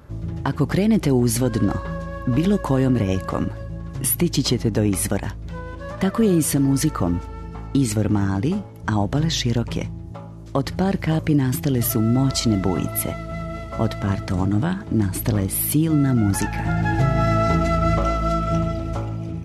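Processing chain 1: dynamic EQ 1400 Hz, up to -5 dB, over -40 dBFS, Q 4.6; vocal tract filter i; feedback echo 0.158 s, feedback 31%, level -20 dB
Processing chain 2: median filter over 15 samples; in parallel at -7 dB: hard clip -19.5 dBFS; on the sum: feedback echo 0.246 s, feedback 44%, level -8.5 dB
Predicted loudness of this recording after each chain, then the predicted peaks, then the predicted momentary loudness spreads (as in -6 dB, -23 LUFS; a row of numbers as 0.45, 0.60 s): -28.0, -19.5 LUFS; -12.5, -5.5 dBFS; 17, 9 LU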